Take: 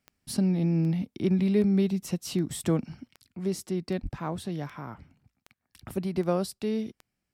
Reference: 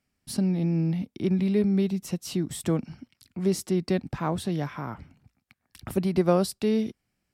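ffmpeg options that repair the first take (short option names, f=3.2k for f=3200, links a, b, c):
-filter_complex "[0:a]adeclick=t=4,asplit=3[a][b][c];[a]afade=t=out:st=4.02:d=0.02[d];[b]highpass=f=140:w=0.5412,highpass=f=140:w=1.3066,afade=t=in:st=4.02:d=0.02,afade=t=out:st=4.14:d=0.02[e];[c]afade=t=in:st=4.14:d=0.02[f];[d][e][f]amix=inputs=3:normalize=0,asetnsamples=n=441:p=0,asendcmd='3.15 volume volume 5dB',volume=0dB"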